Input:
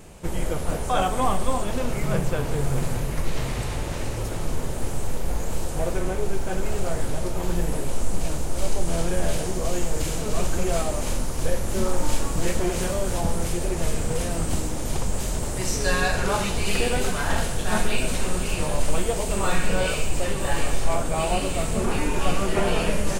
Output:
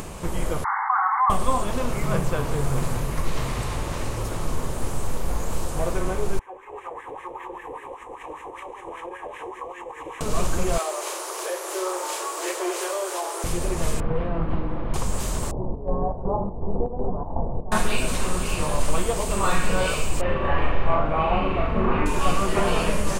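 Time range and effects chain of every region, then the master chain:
0.64–1.3 brick-wall FIR band-pass 760–2200 Hz + fast leveller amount 70%
6.39–10.21 fixed phaser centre 950 Hz, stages 8 + compressor 3:1, threshold -21 dBFS + wah 5.1 Hz 560–1800 Hz, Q 3.1
10.78–13.44 steep high-pass 340 Hz 96 dB/oct + notch 500 Hz, Q 15
14–14.94 Gaussian blur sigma 3.6 samples + comb 6 ms, depth 31%
15.51–17.72 steep low-pass 910 Hz 48 dB/oct + chopper 2.7 Hz, depth 60%, duty 65%
20.21–22.06 LPF 2700 Hz 24 dB/oct + flutter echo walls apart 6.8 m, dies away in 0.53 s
whole clip: bell 1100 Hz +7.5 dB 0.39 oct; upward compressor, threshold -26 dBFS

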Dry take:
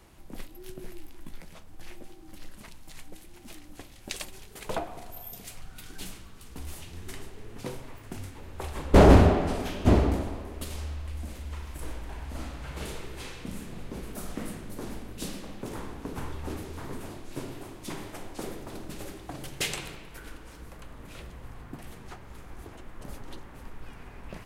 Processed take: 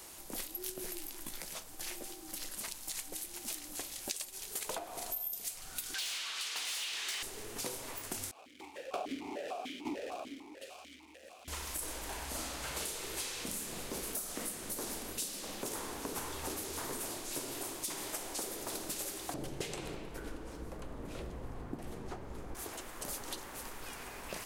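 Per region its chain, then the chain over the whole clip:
5.94–7.23 band-pass 3100 Hz, Q 1.1 + overdrive pedal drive 27 dB, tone 3100 Hz, clips at -30 dBFS
8.31–11.48 companded quantiser 4-bit + vowel sequencer 6.7 Hz
19.34–22.55 LPF 3100 Hz 6 dB/oct + tilt shelf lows +9 dB, about 710 Hz
whole clip: tone controls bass -13 dB, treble +13 dB; compressor 20:1, threshold -39 dBFS; gain +3.5 dB

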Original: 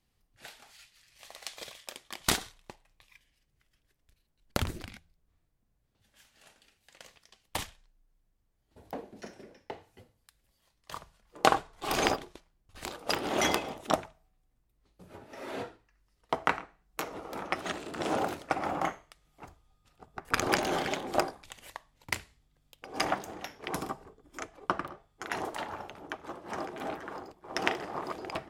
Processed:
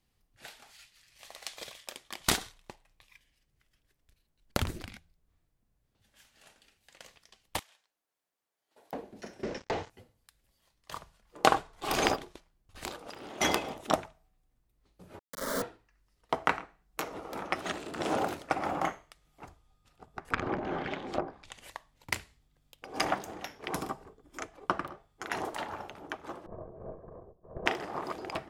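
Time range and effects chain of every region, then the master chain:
7.59–8.93 HPF 540 Hz + compressor 20:1, threshold -52 dBFS
9.43–9.9 sample leveller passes 5 + Chebyshev low-pass 6600 Hz, order 3
12.97–13.41 flutter echo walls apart 11.8 m, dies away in 0.24 s + compressor, threshold -42 dBFS + bell 13000 Hz -4.5 dB 0.63 oct
15.19–15.62 companded quantiser 2-bit + fixed phaser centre 520 Hz, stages 8
19.44–21.72 treble ducked by the level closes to 890 Hz, closed at -24 dBFS + dynamic EQ 660 Hz, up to -5 dB, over -39 dBFS, Q 0.7
26.46–27.66 minimum comb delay 1.8 ms + Bessel low-pass 530 Hz, order 4
whole clip: dry

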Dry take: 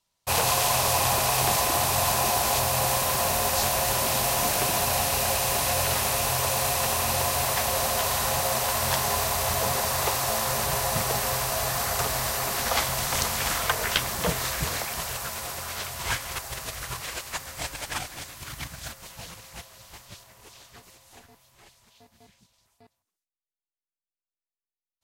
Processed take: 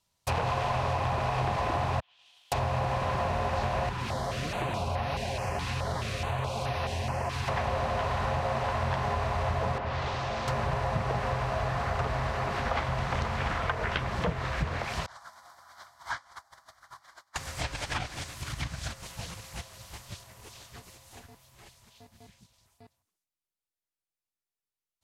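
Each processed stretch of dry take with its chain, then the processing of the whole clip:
2–2.52 expander -12 dBFS + band-pass 3200 Hz, Q 5.8 + short-mantissa float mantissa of 2-bit
3.89–7.48 flange 1.5 Hz, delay 4.2 ms, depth 8.8 ms, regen +46% + stepped notch 4.7 Hz 610–7600 Hz
9.78–10.48 air absorption 220 m + overloaded stage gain 31 dB
15.06–17.36 expander -26 dBFS + three-band isolator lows -23 dB, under 340 Hz, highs -18 dB, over 4800 Hz + fixed phaser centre 1100 Hz, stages 4
whole clip: bell 85 Hz +6.5 dB 2.2 oct; treble ducked by the level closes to 2100 Hz, closed at -23.5 dBFS; compressor, threshold -25 dBFS

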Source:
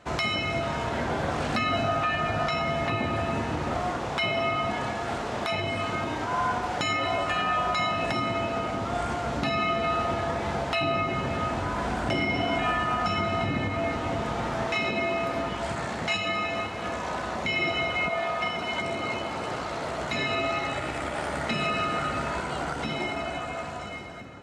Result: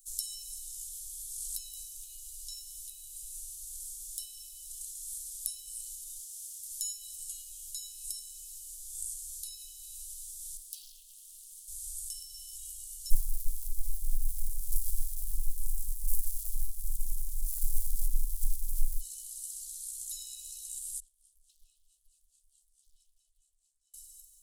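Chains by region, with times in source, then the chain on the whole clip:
6.15–6.71 HPF 220 Hz 6 dB/oct + Doppler distortion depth 0.12 ms
10.57–11.68 Bessel high-pass 1200 Hz + high shelf 3600 Hz -8 dB + Doppler distortion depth 0.29 ms
13.1–19.01 resonant high-pass 530 Hz, resonance Q 6.4 + running maximum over 65 samples
21–23.94 wah 4.6 Hz 230–1300 Hz, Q 2.8 + Doppler distortion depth 0.71 ms
whole clip: inverse Chebyshev band-stop 120–2300 Hz, stop band 80 dB; resonant high shelf 2200 Hz +10.5 dB, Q 3; gain +15 dB

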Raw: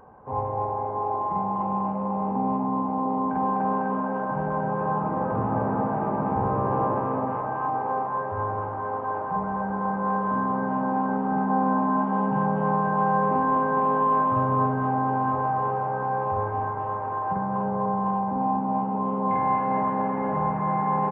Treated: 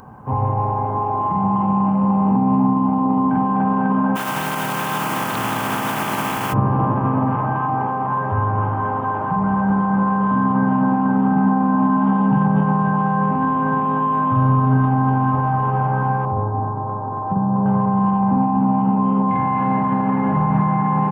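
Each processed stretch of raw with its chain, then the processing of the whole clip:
4.15–6.52 spectral contrast lowered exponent 0.46 + HPF 510 Hz 6 dB/oct
16.25–17.66 delta modulation 64 kbps, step -44.5 dBFS + Bessel low-pass 740 Hz, order 4 + low shelf 150 Hz -7 dB
whole clip: high shelf 2200 Hz +12 dB; limiter -19.5 dBFS; graphic EQ 125/250/500/2000 Hz +9/+5/-8/-4 dB; gain +8.5 dB

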